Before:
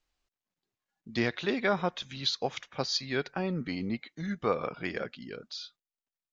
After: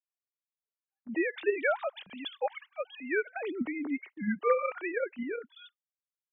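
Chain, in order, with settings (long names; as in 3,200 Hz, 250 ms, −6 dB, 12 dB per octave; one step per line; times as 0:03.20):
three sine waves on the formant tracks
noise gate −52 dBFS, range −15 dB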